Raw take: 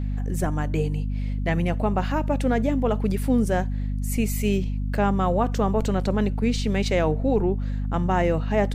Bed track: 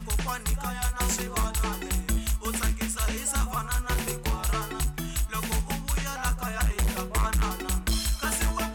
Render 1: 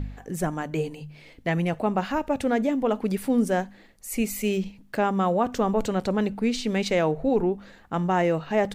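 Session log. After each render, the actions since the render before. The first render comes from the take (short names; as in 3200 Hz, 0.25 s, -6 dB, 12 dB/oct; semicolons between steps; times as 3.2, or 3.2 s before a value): de-hum 50 Hz, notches 5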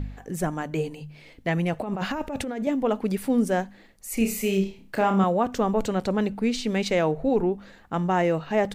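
1.79–2.67 negative-ratio compressor -29 dBFS; 4.14–5.24 flutter echo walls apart 5.3 m, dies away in 0.33 s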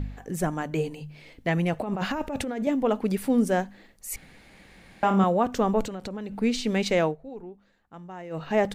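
4.16–5.03 room tone; 5.83–6.39 compressor 12:1, threshold -30 dBFS; 7.04–8.43 dip -17.5 dB, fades 0.13 s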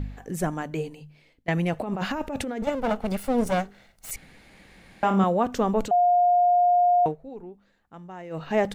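0.5–1.48 fade out, to -20.5 dB; 2.62–4.11 minimum comb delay 1.4 ms; 5.91–7.06 bleep 710 Hz -16 dBFS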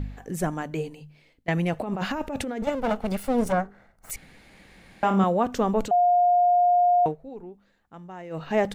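3.52–4.1 resonant high shelf 2100 Hz -11.5 dB, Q 1.5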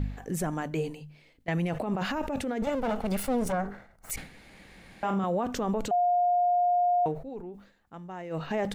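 limiter -21 dBFS, peak gain reduction 11.5 dB; sustainer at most 110 dB/s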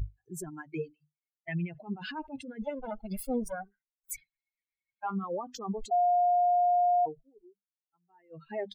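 per-bin expansion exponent 3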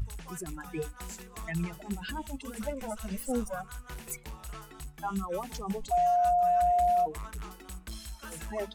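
add bed track -15.5 dB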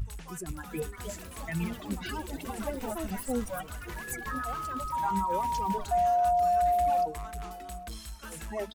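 echo 0.826 s -19.5 dB; echoes that change speed 0.494 s, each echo +5 st, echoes 3, each echo -6 dB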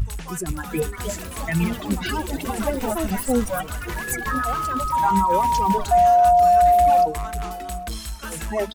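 gain +10.5 dB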